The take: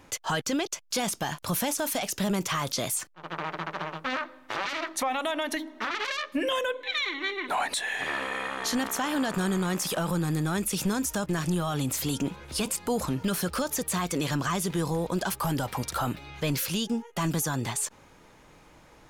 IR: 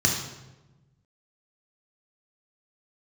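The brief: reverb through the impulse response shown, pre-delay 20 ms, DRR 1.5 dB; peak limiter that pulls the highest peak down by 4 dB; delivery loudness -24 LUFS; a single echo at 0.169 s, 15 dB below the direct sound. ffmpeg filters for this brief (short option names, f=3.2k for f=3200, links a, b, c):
-filter_complex "[0:a]alimiter=limit=-23dB:level=0:latency=1,aecho=1:1:169:0.178,asplit=2[a][b];[1:a]atrim=start_sample=2205,adelay=20[c];[b][c]afir=irnorm=-1:irlink=0,volume=-15dB[d];[a][d]amix=inputs=2:normalize=0,volume=3.5dB"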